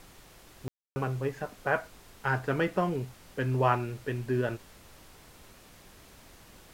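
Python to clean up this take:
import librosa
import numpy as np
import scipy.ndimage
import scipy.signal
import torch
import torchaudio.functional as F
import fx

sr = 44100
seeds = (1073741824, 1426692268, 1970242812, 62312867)

y = fx.fix_ambience(x, sr, seeds[0], print_start_s=5.53, print_end_s=6.03, start_s=0.68, end_s=0.96)
y = fx.noise_reduce(y, sr, print_start_s=0.11, print_end_s=0.61, reduce_db=21.0)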